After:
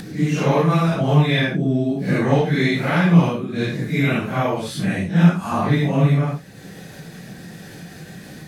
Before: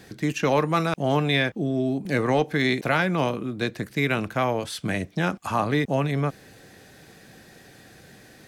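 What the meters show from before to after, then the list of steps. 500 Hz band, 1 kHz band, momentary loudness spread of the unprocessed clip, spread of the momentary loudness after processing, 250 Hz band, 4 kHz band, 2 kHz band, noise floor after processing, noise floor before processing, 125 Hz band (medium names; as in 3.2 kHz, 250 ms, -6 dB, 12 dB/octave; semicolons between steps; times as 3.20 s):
+2.5 dB, +2.0 dB, 6 LU, 22 LU, +7.5 dB, +2.0 dB, +2.0 dB, -40 dBFS, -51 dBFS, +10.0 dB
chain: phase randomisation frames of 200 ms; peaking EQ 170 Hz +12.5 dB 0.6 oct; upward compressor, threshold -31 dBFS; trim +2 dB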